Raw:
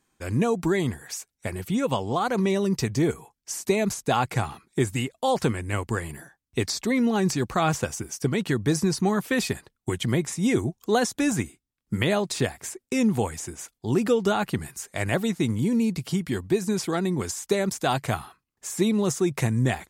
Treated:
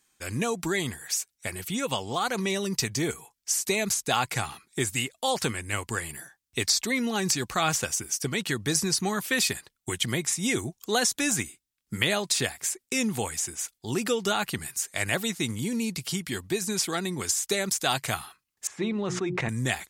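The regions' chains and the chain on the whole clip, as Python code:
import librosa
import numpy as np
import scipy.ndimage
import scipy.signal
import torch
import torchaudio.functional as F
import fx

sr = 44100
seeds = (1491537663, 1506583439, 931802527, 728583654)

y = fx.chain(x, sr, fx.lowpass(hz=2000.0, slope=12),
    fx.hum_notches(base_hz=60, count=6),
    fx.sustainer(db_per_s=39.0), at=(18.67, 19.49))
y = fx.tilt_shelf(y, sr, db=-7.0, hz=1400.0)
y = fx.notch(y, sr, hz=1000.0, q=26.0)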